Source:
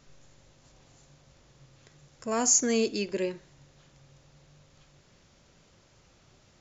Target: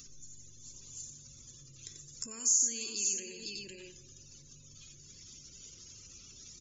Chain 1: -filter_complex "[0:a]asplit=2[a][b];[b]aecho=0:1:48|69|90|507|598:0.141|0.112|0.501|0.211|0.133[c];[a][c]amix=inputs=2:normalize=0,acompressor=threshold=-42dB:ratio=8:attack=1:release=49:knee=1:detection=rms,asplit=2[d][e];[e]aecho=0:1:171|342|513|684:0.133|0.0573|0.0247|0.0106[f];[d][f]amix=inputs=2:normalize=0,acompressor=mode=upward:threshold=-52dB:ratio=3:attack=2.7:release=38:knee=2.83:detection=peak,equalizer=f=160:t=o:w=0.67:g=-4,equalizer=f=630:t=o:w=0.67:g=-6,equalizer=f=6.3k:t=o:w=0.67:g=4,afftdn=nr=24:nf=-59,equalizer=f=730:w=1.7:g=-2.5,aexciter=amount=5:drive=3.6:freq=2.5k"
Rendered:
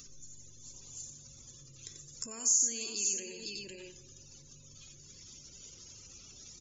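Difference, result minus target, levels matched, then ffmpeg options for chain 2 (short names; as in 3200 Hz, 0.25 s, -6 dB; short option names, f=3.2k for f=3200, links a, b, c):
1000 Hz band +4.0 dB
-filter_complex "[0:a]asplit=2[a][b];[b]aecho=0:1:48|69|90|507|598:0.141|0.112|0.501|0.211|0.133[c];[a][c]amix=inputs=2:normalize=0,acompressor=threshold=-42dB:ratio=8:attack=1:release=49:knee=1:detection=rms,asplit=2[d][e];[e]aecho=0:1:171|342|513|684:0.133|0.0573|0.0247|0.0106[f];[d][f]amix=inputs=2:normalize=0,acompressor=mode=upward:threshold=-52dB:ratio=3:attack=2.7:release=38:knee=2.83:detection=peak,equalizer=f=160:t=o:w=0.67:g=-4,equalizer=f=630:t=o:w=0.67:g=-6,equalizer=f=6.3k:t=o:w=0.67:g=4,afftdn=nr=24:nf=-59,equalizer=f=730:w=1.7:g=-12,aexciter=amount=5:drive=3.6:freq=2.5k"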